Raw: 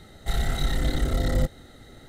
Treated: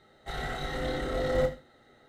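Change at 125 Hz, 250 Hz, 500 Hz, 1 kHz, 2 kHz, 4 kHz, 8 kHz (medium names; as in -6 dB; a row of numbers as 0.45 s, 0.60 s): -10.5 dB, -5.5 dB, +4.5 dB, +1.0 dB, -0.5 dB, -5.5 dB, -10.5 dB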